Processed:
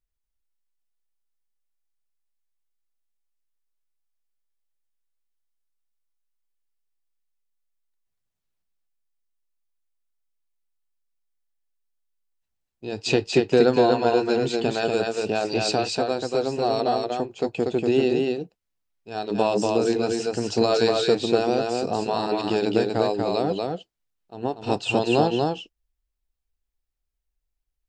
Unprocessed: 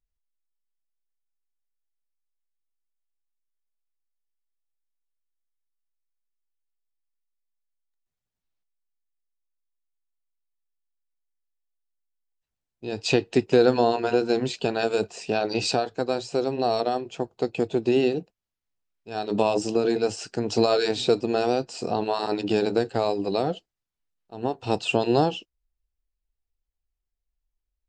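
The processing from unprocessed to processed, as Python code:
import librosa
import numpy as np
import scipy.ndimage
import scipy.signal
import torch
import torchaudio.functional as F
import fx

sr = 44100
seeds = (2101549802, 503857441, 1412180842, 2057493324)

y = x + 10.0 ** (-3.0 / 20.0) * np.pad(x, (int(239 * sr / 1000.0), 0))[:len(x)]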